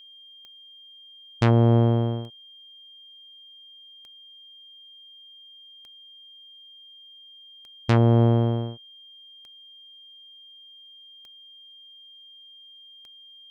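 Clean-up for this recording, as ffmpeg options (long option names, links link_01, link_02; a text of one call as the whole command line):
ffmpeg -i in.wav -af "adeclick=threshold=4,bandreject=frequency=3200:width=30" out.wav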